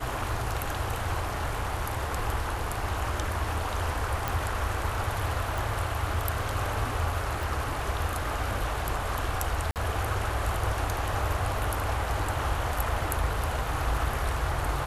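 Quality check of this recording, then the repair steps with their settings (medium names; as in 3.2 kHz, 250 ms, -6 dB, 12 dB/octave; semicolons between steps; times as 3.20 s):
4.28 s: pop
5.58 s: pop
7.43 s: pop
9.71–9.76 s: dropout 48 ms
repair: de-click; interpolate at 9.71 s, 48 ms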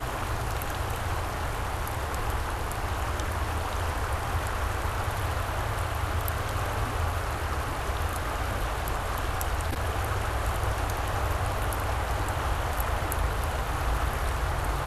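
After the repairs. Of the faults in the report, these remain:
7.43 s: pop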